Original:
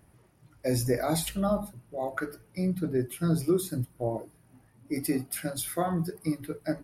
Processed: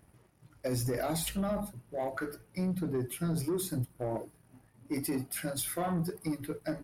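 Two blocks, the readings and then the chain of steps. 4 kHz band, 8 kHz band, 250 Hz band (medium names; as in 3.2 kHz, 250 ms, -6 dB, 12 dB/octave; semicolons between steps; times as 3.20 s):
-2.5 dB, -2.0 dB, -4.5 dB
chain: peak limiter -22 dBFS, peak gain reduction 7 dB; waveshaping leveller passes 1; trim -3.5 dB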